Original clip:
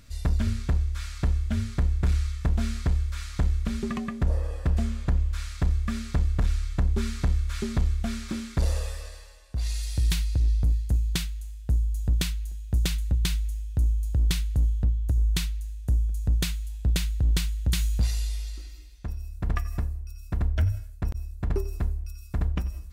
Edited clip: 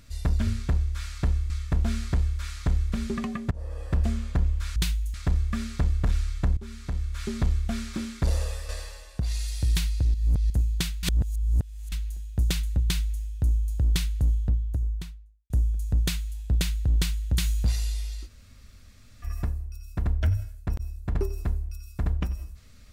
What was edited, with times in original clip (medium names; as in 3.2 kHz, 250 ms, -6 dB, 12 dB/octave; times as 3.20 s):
1.50–2.23 s: delete
4.24–4.65 s: fade in, from -21.5 dB
6.92–7.78 s: fade in, from -16.5 dB
9.04–9.55 s: gain +7.5 dB
10.49–10.85 s: reverse
11.38–12.27 s: reverse
13.19–13.57 s: copy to 5.49 s
14.69–15.85 s: studio fade out
18.62–19.60 s: room tone, crossfade 0.06 s